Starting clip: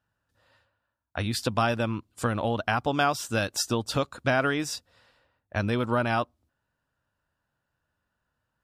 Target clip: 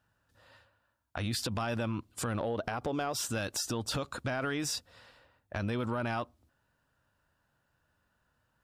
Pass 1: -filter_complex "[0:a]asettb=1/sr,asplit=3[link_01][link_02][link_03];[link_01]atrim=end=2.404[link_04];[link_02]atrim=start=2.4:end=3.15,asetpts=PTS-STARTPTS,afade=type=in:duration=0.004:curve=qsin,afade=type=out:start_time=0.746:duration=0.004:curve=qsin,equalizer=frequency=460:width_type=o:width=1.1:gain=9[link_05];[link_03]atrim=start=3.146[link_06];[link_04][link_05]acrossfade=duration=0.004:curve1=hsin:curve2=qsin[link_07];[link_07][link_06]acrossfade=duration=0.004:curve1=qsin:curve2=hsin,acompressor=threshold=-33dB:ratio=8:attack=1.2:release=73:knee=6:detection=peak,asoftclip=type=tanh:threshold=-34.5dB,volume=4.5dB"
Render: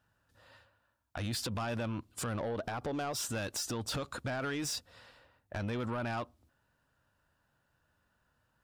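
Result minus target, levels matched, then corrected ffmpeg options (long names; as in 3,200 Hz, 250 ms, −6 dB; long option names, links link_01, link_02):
soft clipping: distortion +16 dB
-filter_complex "[0:a]asettb=1/sr,asplit=3[link_01][link_02][link_03];[link_01]atrim=end=2.404[link_04];[link_02]atrim=start=2.4:end=3.15,asetpts=PTS-STARTPTS,afade=type=in:duration=0.004:curve=qsin,afade=type=out:start_time=0.746:duration=0.004:curve=qsin,equalizer=frequency=460:width_type=o:width=1.1:gain=9[link_05];[link_03]atrim=start=3.146[link_06];[link_04][link_05]acrossfade=duration=0.004:curve1=hsin:curve2=qsin[link_07];[link_07][link_06]acrossfade=duration=0.004:curve1=qsin:curve2=hsin,acompressor=threshold=-33dB:ratio=8:attack=1.2:release=73:knee=6:detection=peak,asoftclip=type=tanh:threshold=-23.5dB,volume=4.5dB"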